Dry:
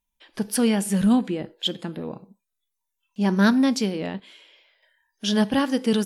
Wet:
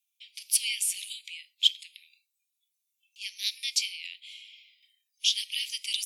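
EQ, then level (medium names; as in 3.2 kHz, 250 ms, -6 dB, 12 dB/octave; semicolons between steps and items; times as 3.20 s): steep high-pass 2.2 kHz 96 dB/octave; +4.0 dB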